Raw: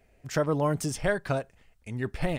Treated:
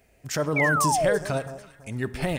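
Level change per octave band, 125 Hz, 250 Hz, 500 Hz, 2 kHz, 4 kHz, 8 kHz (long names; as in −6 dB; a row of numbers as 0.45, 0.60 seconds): +1.5, +2.0, +3.5, +9.0, +6.0, +8.5 decibels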